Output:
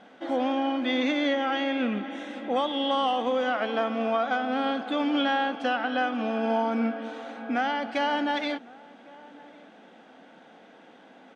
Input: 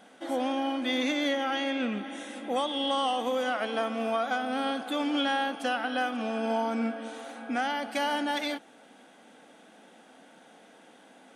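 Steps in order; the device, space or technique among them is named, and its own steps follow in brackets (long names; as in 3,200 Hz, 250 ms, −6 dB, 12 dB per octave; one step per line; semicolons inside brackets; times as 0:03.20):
shout across a valley (high-frequency loss of the air 160 metres; slap from a distant wall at 190 metres, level −22 dB)
level +3.5 dB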